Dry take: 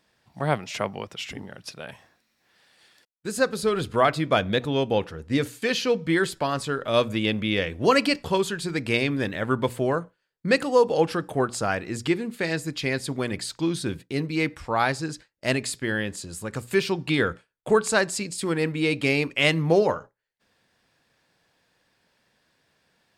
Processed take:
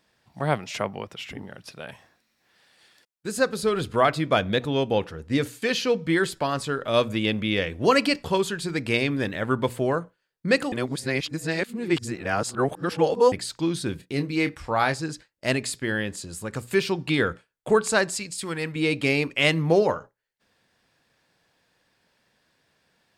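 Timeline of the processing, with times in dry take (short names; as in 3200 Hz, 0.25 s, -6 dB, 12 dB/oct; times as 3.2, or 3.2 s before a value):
0.81–1.74 dynamic EQ 6300 Hz, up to -7 dB, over -50 dBFS, Q 0.71
10.72–13.32 reverse
13.97–14.94 doubler 28 ms -10.5 dB
18.17–18.76 bell 320 Hz -7.5 dB 2.4 oct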